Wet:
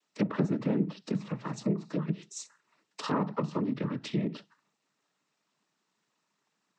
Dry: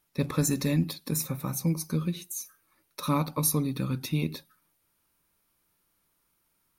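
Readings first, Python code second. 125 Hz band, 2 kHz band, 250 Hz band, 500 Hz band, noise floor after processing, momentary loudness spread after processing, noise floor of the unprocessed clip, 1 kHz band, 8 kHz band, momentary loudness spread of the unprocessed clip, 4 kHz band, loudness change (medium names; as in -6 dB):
-5.5 dB, -3.0 dB, -1.0 dB, +1.0 dB, -81 dBFS, 13 LU, -74 dBFS, -1.5 dB, -15.0 dB, 11 LU, -6.5 dB, -3.0 dB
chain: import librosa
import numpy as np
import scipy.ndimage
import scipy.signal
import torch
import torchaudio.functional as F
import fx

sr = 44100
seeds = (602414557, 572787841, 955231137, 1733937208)

y = fx.noise_vocoder(x, sr, seeds[0], bands=12)
y = fx.env_lowpass_down(y, sr, base_hz=1300.0, full_db=-24.0)
y = scipy.signal.sosfilt(scipy.signal.butter(4, 160.0, 'highpass', fs=sr, output='sos'), y)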